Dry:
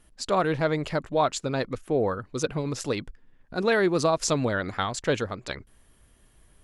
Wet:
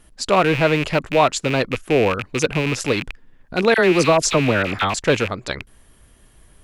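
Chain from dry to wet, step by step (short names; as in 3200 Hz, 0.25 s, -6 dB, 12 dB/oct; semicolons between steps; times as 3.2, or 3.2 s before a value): rattling part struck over -37 dBFS, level -21 dBFS; 3.74–4.94 dispersion lows, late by 44 ms, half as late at 1400 Hz; gain +7.5 dB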